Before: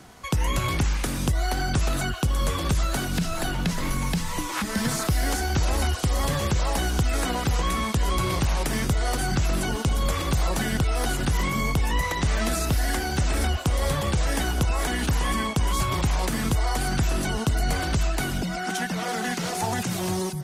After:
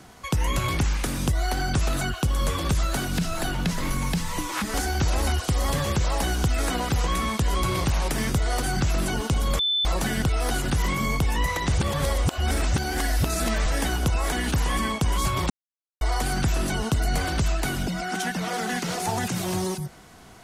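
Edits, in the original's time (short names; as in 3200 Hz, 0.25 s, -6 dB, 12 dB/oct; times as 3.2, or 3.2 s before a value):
4.74–5.29 cut
10.14–10.4 bleep 3520 Hz -20.5 dBFS
12.29–14.21 reverse
16.05–16.56 mute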